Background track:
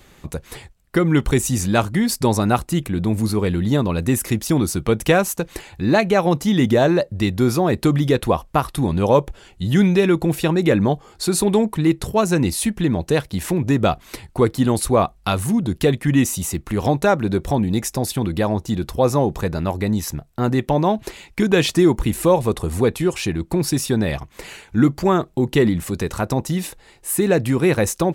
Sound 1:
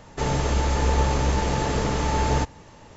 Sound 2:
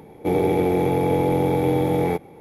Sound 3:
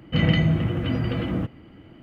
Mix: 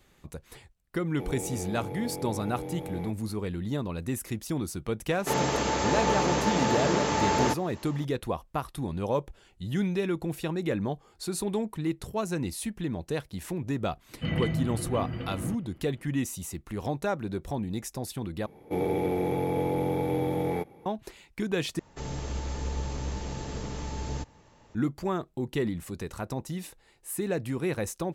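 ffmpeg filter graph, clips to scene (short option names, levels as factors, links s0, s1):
-filter_complex "[2:a]asplit=2[s0][s1];[1:a]asplit=2[s2][s3];[0:a]volume=0.224[s4];[s2]highpass=180[s5];[s3]acrossover=split=400|3000[s6][s7][s8];[s7]acompressor=threshold=0.0282:ratio=6:attack=3.2:release=140:knee=2.83:detection=peak[s9];[s6][s9][s8]amix=inputs=3:normalize=0[s10];[s4]asplit=3[s11][s12][s13];[s11]atrim=end=18.464[s14];[s1]atrim=end=2.4,asetpts=PTS-STARTPTS,volume=0.398[s15];[s12]atrim=start=20.856:end=21.794[s16];[s10]atrim=end=2.96,asetpts=PTS-STARTPTS,volume=0.299[s17];[s13]atrim=start=24.746[s18];[s0]atrim=end=2.4,asetpts=PTS-STARTPTS,volume=0.133,afade=t=in:d=0.004:c=hsin,afade=t=out:st=2.396:d=0.004:c=hsin,adelay=940[s19];[s5]atrim=end=2.96,asetpts=PTS-STARTPTS,afade=t=in:d=0.004:c=hsin,afade=t=out:st=2.956:d=0.004:c=hsin,adelay=224469S[s20];[3:a]atrim=end=2.02,asetpts=PTS-STARTPTS,volume=0.335,afade=t=in:d=0.004:c=hsin,afade=t=out:st=2.016:d=0.004:c=hsin,adelay=14090[s21];[s14][s15]acrossfade=d=0.004:c1=hsin:c2=hsin[s22];[s22][s16]acrossfade=d=0.004:c1=hsin:c2=hsin[s23];[s23][s17]acrossfade=d=0.004:c1=hsin:c2=hsin[s24];[s24][s18]acrossfade=d=0.004:c1=hsin:c2=hsin[s25];[s25][s19][s20][s21]amix=inputs=4:normalize=0"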